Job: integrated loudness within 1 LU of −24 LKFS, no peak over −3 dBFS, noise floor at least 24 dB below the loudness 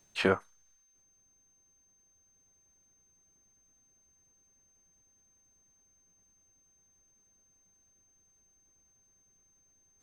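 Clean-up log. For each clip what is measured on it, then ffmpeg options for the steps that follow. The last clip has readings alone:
interfering tone 6,300 Hz; level of the tone −66 dBFS; integrated loudness −30.0 LKFS; sample peak −10.5 dBFS; target loudness −24.0 LKFS
→ -af "bandreject=frequency=6300:width=30"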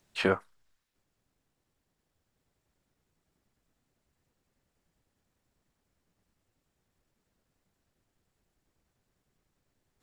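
interfering tone none found; integrated loudness −30.0 LKFS; sample peak −10.5 dBFS; target loudness −24.0 LKFS
→ -af "volume=6dB"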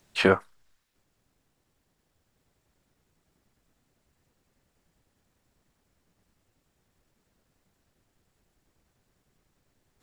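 integrated loudness −24.0 LKFS; sample peak −4.5 dBFS; background noise floor −75 dBFS

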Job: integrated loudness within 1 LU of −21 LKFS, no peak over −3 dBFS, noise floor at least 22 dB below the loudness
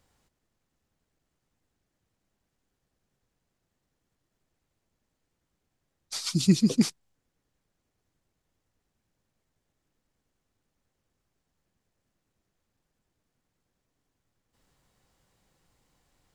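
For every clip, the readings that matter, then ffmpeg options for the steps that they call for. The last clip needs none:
integrated loudness −25.0 LKFS; sample peak −9.5 dBFS; target loudness −21.0 LKFS
→ -af "volume=4dB"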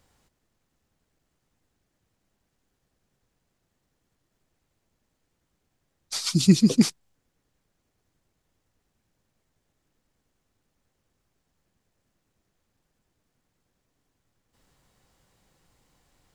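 integrated loudness −21.5 LKFS; sample peak −5.5 dBFS; background noise floor −77 dBFS

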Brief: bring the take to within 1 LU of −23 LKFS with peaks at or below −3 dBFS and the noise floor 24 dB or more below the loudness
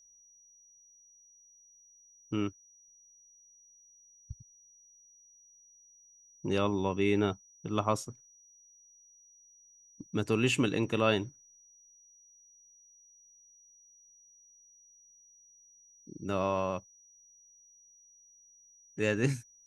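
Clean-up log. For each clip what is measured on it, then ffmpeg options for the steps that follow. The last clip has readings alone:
interfering tone 5,800 Hz; level of the tone −58 dBFS; integrated loudness −31.5 LKFS; sample peak −13.5 dBFS; target loudness −23.0 LKFS
→ -af "bandreject=frequency=5800:width=30"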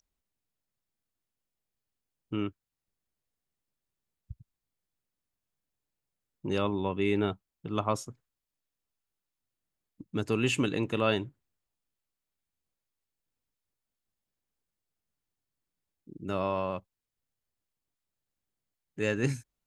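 interfering tone none found; integrated loudness −31.5 LKFS; sample peak −13.5 dBFS; target loudness −23.0 LKFS
→ -af "volume=8.5dB"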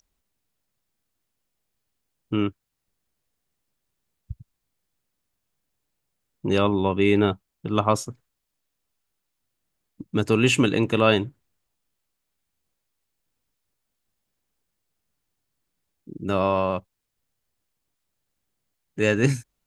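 integrated loudness −23.0 LKFS; sample peak −5.0 dBFS; background noise floor −80 dBFS

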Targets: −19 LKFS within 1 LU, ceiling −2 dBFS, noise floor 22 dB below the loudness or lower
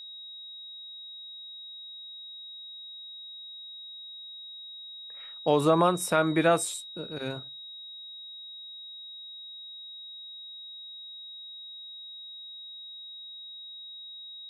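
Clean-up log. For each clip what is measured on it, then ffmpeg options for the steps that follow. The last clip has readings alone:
interfering tone 3,800 Hz; level of the tone −41 dBFS; integrated loudness −33.5 LKFS; sample peak −10.5 dBFS; target loudness −19.0 LKFS
→ -af "bandreject=frequency=3800:width=30"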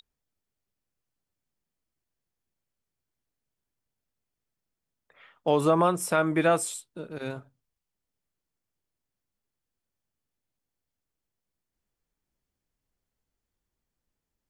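interfering tone none found; integrated loudness −25.0 LKFS; sample peak −10.5 dBFS; target loudness −19.0 LKFS
→ -af "volume=6dB"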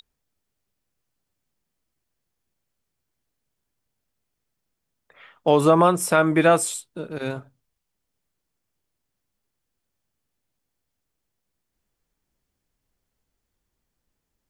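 integrated loudness −19.0 LKFS; sample peak −4.5 dBFS; background noise floor −80 dBFS

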